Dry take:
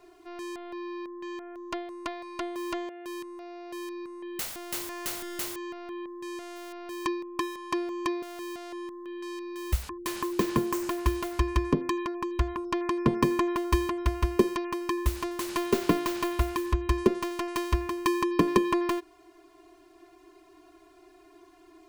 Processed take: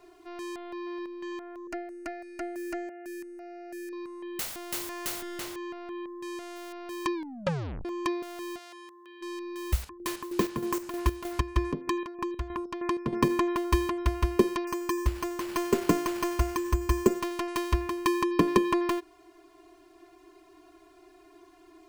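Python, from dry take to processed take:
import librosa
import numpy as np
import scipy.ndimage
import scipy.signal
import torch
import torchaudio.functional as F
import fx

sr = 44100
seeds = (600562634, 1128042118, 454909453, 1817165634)

y = fx.echo_throw(x, sr, start_s=0.6, length_s=0.52, ms=260, feedback_pct=15, wet_db=-10.5)
y = fx.fixed_phaser(y, sr, hz=700.0, stages=8, at=(1.67, 3.93))
y = fx.high_shelf(y, sr, hz=6400.0, db=-9.5, at=(5.21, 5.95))
y = fx.highpass(y, sr, hz=1400.0, slope=6, at=(8.57, 9.21), fade=0.02)
y = fx.chopper(y, sr, hz=3.2, depth_pct=60, duty_pct=50, at=(9.81, 13.28), fade=0.02)
y = fx.resample_bad(y, sr, factor=6, down='filtered', up='hold', at=(14.67, 17.21))
y = fx.edit(y, sr, fx.tape_stop(start_s=7.14, length_s=0.71), tone=tone)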